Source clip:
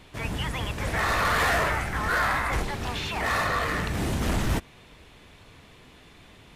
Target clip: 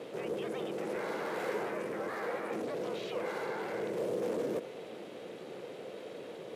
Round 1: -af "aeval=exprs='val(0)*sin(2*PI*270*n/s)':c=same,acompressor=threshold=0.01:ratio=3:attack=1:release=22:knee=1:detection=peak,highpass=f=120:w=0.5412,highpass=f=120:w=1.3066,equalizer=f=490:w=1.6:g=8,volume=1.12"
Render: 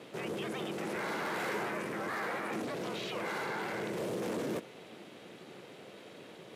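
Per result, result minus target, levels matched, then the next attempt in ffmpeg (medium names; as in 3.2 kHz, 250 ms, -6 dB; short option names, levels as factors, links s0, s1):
compression: peak gain reduction -5.5 dB; 500 Hz band -4.5 dB
-af "aeval=exprs='val(0)*sin(2*PI*270*n/s)':c=same,acompressor=threshold=0.00398:ratio=3:attack=1:release=22:knee=1:detection=peak,highpass=f=120:w=0.5412,highpass=f=120:w=1.3066,equalizer=f=490:w=1.6:g=8,volume=1.12"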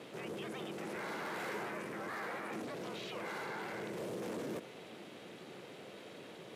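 500 Hz band -3.0 dB
-af "aeval=exprs='val(0)*sin(2*PI*270*n/s)':c=same,acompressor=threshold=0.00398:ratio=3:attack=1:release=22:knee=1:detection=peak,highpass=f=120:w=0.5412,highpass=f=120:w=1.3066,equalizer=f=490:w=1.6:g=19,volume=1.12"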